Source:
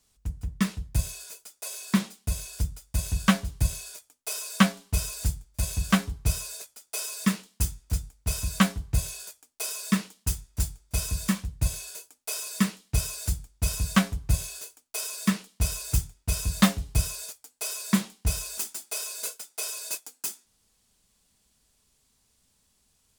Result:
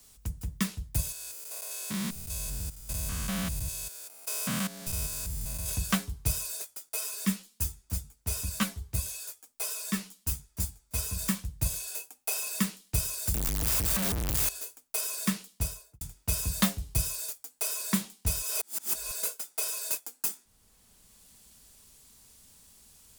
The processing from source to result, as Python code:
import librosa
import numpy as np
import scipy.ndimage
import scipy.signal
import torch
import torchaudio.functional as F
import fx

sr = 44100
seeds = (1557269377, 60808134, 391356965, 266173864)

y = fx.spec_steps(x, sr, hold_ms=200, at=(1.12, 5.69))
y = fx.ensemble(y, sr, at=(6.89, 11.19))
y = fx.small_body(y, sr, hz=(780.0, 2600.0), ring_ms=45, db=10, at=(11.91, 12.6))
y = fx.clip_1bit(y, sr, at=(13.34, 14.49))
y = fx.studio_fade_out(y, sr, start_s=15.47, length_s=0.54)
y = fx.edit(y, sr, fx.reverse_span(start_s=18.42, length_s=0.69), tone=tone)
y = fx.high_shelf(y, sr, hz=11000.0, db=12.0)
y = fx.band_squash(y, sr, depth_pct=40)
y = y * librosa.db_to_amplitude(-3.5)